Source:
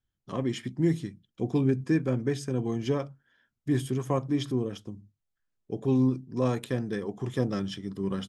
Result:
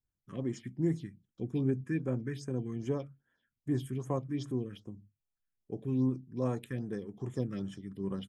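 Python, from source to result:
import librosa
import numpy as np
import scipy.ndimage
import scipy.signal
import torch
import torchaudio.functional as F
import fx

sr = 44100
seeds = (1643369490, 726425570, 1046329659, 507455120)

y = fx.phaser_stages(x, sr, stages=4, low_hz=680.0, high_hz=4700.0, hz=2.5, feedback_pct=25)
y = y * 10.0 ** (-6.5 / 20.0)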